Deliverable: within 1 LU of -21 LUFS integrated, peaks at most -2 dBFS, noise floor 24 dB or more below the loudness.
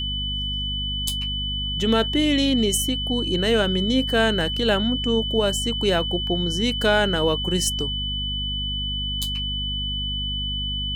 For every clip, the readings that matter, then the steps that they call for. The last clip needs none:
hum 50 Hz; highest harmonic 250 Hz; hum level -28 dBFS; steady tone 3 kHz; tone level -26 dBFS; loudness -22.5 LUFS; peak level -6.0 dBFS; loudness target -21.0 LUFS
-> hum notches 50/100/150/200/250 Hz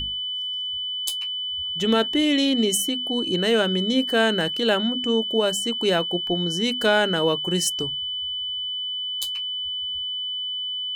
hum not found; steady tone 3 kHz; tone level -26 dBFS
-> band-stop 3 kHz, Q 30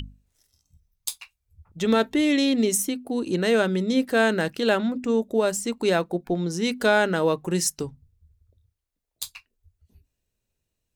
steady tone not found; loudness -23.5 LUFS; peak level -7.0 dBFS; loudness target -21.0 LUFS
-> trim +2.5 dB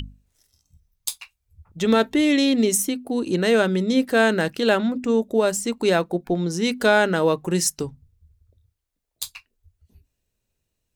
loudness -21.0 LUFS; peak level -4.5 dBFS; noise floor -79 dBFS

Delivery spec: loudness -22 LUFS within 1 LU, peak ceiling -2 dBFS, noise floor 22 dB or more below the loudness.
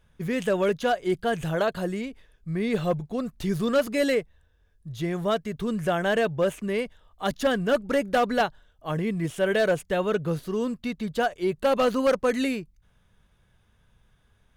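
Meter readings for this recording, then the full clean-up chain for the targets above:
clipped samples 0.7%; clipping level -16.0 dBFS; loudness -26.5 LUFS; peak level -16.0 dBFS; loudness target -22.0 LUFS
-> clip repair -16 dBFS; trim +4.5 dB

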